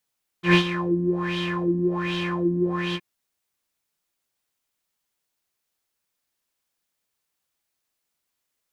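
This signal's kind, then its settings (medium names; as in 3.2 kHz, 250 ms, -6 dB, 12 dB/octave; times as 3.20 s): synth patch with filter wobble F3, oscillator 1 triangle, oscillator 2 square, interval +12 st, oscillator 2 level -5 dB, sub -27 dB, noise -3 dB, filter lowpass, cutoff 760 Hz, Q 4.4, filter decay 0.06 s, filter sustain 15%, attack 110 ms, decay 0.09 s, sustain -13 dB, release 0.05 s, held 2.52 s, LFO 1.3 Hz, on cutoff 1.8 oct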